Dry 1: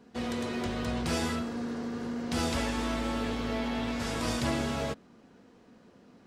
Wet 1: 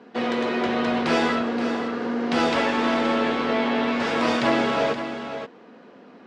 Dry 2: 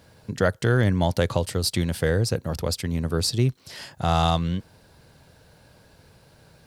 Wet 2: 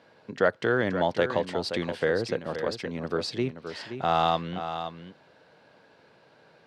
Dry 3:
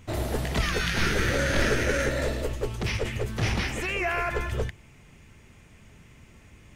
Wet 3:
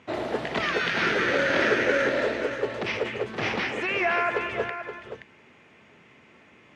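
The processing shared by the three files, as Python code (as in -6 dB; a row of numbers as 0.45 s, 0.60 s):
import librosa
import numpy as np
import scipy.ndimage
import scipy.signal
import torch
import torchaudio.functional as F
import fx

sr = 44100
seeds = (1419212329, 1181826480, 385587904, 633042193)

p1 = fx.bandpass_edges(x, sr, low_hz=290.0, high_hz=3100.0)
p2 = p1 + fx.echo_single(p1, sr, ms=524, db=-9.5, dry=0)
y = p2 * 10.0 ** (-9 / 20.0) / np.max(np.abs(p2))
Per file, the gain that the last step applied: +12.0 dB, 0.0 dB, +4.0 dB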